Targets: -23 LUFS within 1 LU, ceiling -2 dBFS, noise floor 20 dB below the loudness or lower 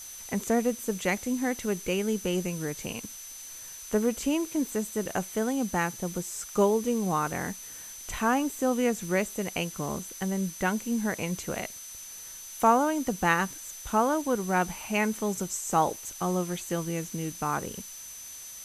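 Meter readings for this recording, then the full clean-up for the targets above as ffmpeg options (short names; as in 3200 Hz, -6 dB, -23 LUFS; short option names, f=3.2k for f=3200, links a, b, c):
steady tone 6100 Hz; tone level -43 dBFS; noise floor -43 dBFS; noise floor target -49 dBFS; loudness -29.0 LUFS; peak -9.0 dBFS; loudness target -23.0 LUFS
-> -af "bandreject=f=6.1k:w=30"
-af "afftdn=nr=6:nf=-43"
-af "volume=6dB"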